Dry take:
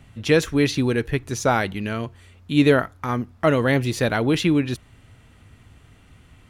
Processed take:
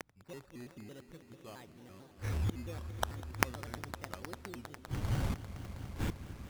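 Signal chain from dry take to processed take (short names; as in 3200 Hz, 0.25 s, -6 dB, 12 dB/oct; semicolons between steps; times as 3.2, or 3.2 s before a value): median filter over 15 samples; notch 550 Hz, Q 12; in parallel at -2.5 dB: limiter -17 dBFS, peak gain reduction 11.5 dB; on the sum: upward compressor, threshold -34 dBFS; decimation with a swept rate 13×, swing 60% 0.44 Hz; flipped gate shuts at -33 dBFS, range -42 dB; swelling echo 0.101 s, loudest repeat 5, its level -17 dB; shaped vibrato square 4.5 Hz, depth 250 cents; gain +9 dB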